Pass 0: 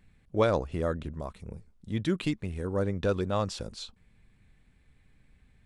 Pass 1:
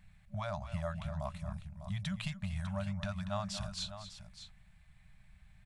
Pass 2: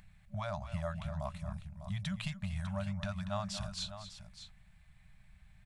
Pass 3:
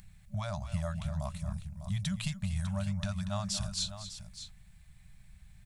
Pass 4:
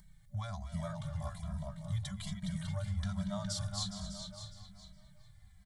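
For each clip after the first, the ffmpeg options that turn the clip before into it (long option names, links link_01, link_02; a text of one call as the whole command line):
ffmpeg -i in.wav -af "acompressor=threshold=-32dB:ratio=6,aecho=1:1:236|601:0.251|0.266,afftfilt=real='re*(1-between(b*sr/4096,210,580))':imag='im*(1-between(b*sr/4096,210,580))':win_size=4096:overlap=0.75,volume=1dB" out.wav
ffmpeg -i in.wav -af "acompressor=mode=upward:threshold=-58dB:ratio=2.5" out.wav
ffmpeg -i in.wav -af "bass=frequency=250:gain=6,treble=frequency=4000:gain=12,volume=-1dB" out.wav
ffmpeg -i in.wav -filter_complex "[0:a]asuperstop=centerf=2600:order=4:qfactor=4.6,asplit=2[link_01][link_02];[link_02]adelay=414,lowpass=frequency=3400:poles=1,volume=-3.5dB,asplit=2[link_03][link_04];[link_04]adelay=414,lowpass=frequency=3400:poles=1,volume=0.36,asplit=2[link_05][link_06];[link_06]adelay=414,lowpass=frequency=3400:poles=1,volume=0.36,asplit=2[link_07][link_08];[link_08]adelay=414,lowpass=frequency=3400:poles=1,volume=0.36,asplit=2[link_09][link_10];[link_10]adelay=414,lowpass=frequency=3400:poles=1,volume=0.36[link_11];[link_03][link_05][link_07][link_09][link_11]amix=inputs=5:normalize=0[link_12];[link_01][link_12]amix=inputs=2:normalize=0,asplit=2[link_13][link_14];[link_14]adelay=2.7,afreqshift=-1.2[link_15];[link_13][link_15]amix=inputs=2:normalize=1,volume=-2dB" out.wav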